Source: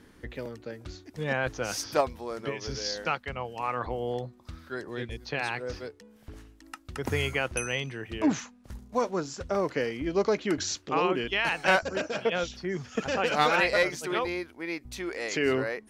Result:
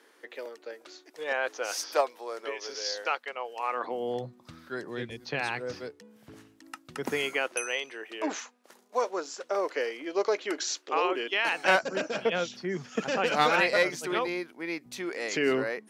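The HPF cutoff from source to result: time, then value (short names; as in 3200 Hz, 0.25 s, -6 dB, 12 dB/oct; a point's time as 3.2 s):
HPF 24 dB/oct
3.64 s 400 Hz
4.25 s 120 Hz
6.8 s 120 Hz
7.58 s 380 Hz
11.09 s 380 Hz
12.05 s 150 Hz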